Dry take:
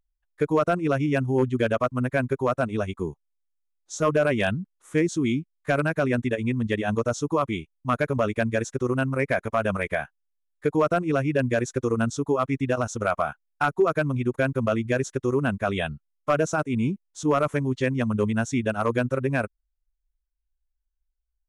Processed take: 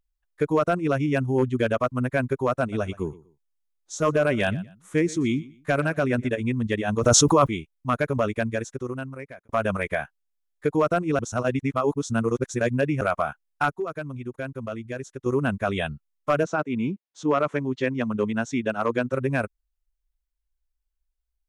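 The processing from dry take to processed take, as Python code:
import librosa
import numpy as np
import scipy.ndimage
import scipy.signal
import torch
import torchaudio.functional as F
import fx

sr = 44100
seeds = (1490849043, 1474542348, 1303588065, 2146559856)

y = fx.echo_feedback(x, sr, ms=121, feedback_pct=27, wet_db=-20.0, at=(2.6, 6.41))
y = fx.env_flatten(y, sr, amount_pct=100, at=(7.01, 7.46), fade=0.02)
y = fx.bandpass_edges(y, sr, low_hz=170.0, high_hz=fx.line((16.43, 3900.0), (19.12, 6800.0)), at=(16.43, 19.12), fade=0.02)
y = fx.edit(y, sr, fx.fade_out_span(start_s=8.22, length_s=1.27),
    fx.reverse_span(start_s=11.19, length_s=1.82),
    fx.clip_gain(start_s=13.7, length_s=1.56, db=-9.0), tone=tone)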